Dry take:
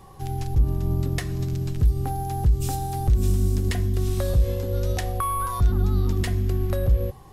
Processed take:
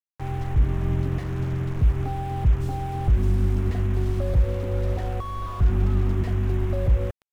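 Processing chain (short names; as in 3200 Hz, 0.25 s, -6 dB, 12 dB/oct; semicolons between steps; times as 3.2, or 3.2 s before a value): bit-crush 6-bit; slew limiter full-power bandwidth 23 Hz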